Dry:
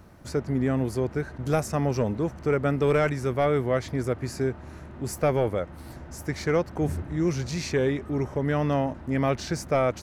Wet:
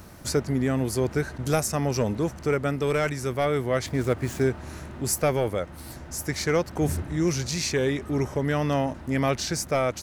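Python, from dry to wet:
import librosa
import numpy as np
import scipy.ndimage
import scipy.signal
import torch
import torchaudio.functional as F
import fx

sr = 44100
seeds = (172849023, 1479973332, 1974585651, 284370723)

y = fx.median_filter(x, sr, points=9, at=(3.86, 4.48))
y = fx.high_shelf(y, sr, hz=3300.0, db=11.5)
y = fx.rider(y, sr, range_db=10, speed_s=0.5)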